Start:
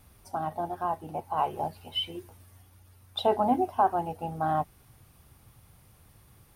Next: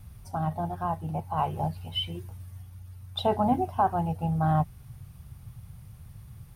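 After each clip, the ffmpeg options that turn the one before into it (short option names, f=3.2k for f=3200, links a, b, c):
-af "lowshelf=f=210:t=q:w=1.5:g=11"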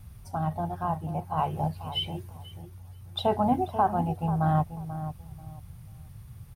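-filter_complex "[0:a]asplit=2[a][b];[b]adelay=488,lowpass=f=960:p=1,volume=-10dB,asplit=2[c][d];[d]adelay=488,lowpass=f=960:p=1,volume=0.27,asplit=2[e][f];[f]adelay=488,lowpass=f=960:p=1,volume=0.27[g];[a][c][e][g]amix=inputs=4:normalize=0"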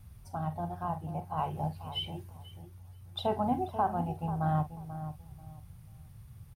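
-filter_complex "[0:a]asplit=2[a][b];[b]adelay=46,volume=-13.5dB[c];[a][c]amix=inputs=2:normalize=0,volume=-5.5dB"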